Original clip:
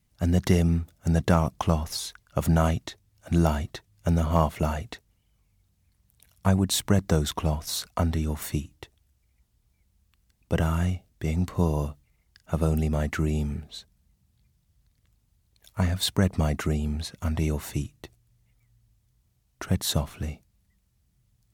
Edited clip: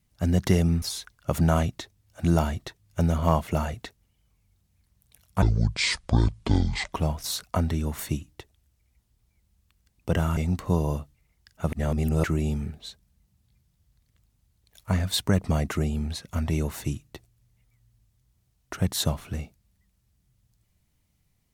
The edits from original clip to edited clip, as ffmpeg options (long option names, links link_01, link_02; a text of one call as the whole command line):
ffmpeg -i in.wav -filter_complex "[0:a]asplit=7[link_01][link_02][link_03][link_04][link_05][link_06][link_07];[link_01]atrim=end=0.822[link_08];[link_02]atrim=start=1.898:end=6.504[link_09];[link_03]atrim=start=6.5:end=7.36,asetpts=PTS-STARTPTS,asetrate=25137,aresample=44100[link_10];[link_04]atrim=start=7.356:end=10.802[link_11];[link_05]atrim=start=11.258:end=12.622[link_12];[link_06]atrim=start=12.618:end=13.132,asetpts=PTS-STARTPTS,areverse[link_13];[link_07]atrim=start=13.128[link_14];[link_08][link_09]acrossfade=duration=0.004:curve1=hsin:curve2=hsin[link_15];[link_15][link_10]acrossfade=duration=0.004:curve1=hsin:curve2=hsin[link_16];[link_16][link_11]acrossfade=duration=0.004:curve1=hsin:curve2=hsin[link_17];[link_17][link_12]acrossfade=duration=0.004:curve1=hsin:curve2=hsin[link_18];[link_18][link_13]acrossfade=duration=0.004:curve1=hsin:curve2=hsin[link_19];[link_19][link_14]acrossfade=duration=0.004:curve1=hsin:curve2=hsin" out.wav